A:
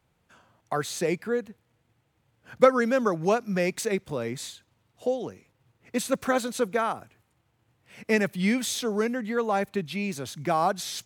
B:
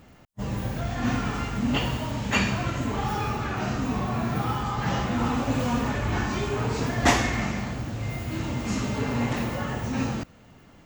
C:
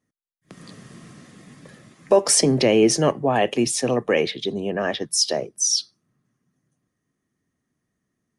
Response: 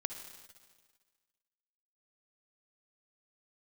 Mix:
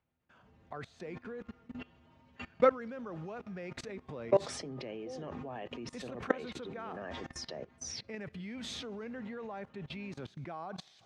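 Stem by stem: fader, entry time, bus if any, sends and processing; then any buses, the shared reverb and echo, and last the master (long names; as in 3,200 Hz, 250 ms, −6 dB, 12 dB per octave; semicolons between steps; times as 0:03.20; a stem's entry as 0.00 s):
−2.5 dB, 0.00 s, send −18.5 dB, no processing
−11.0 dB, 0.05 s, send −19 dB, high-pass filter 40 Hz 12 dB per octave; stiff-string resonator 80 Hz, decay 0.29 s, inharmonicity 0.008
−8.5 dB, 2.20 s, no send, no processing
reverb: on, RT60 1.6 s, pre-delay 50 ms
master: low-pass filter 3,400 Hz 12 dB per octave; output level in coarse steps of 21 dB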